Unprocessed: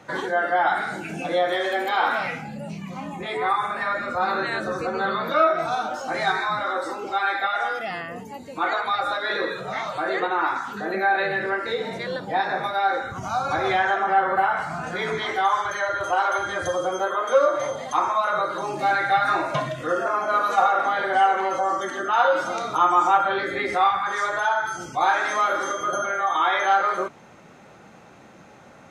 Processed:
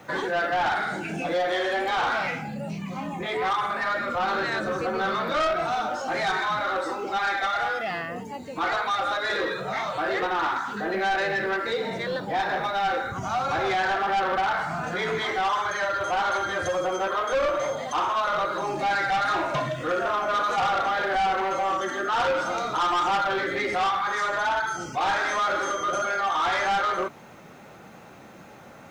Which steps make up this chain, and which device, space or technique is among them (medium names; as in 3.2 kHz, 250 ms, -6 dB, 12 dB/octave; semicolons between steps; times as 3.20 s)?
compact cassette (saturation -22 dBFS, distortion -9 dB; low-pass 8.1 kHz 12 dB/octave; wow and flutter 21 cents; white noise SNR 41 dB); trim +1.5 dB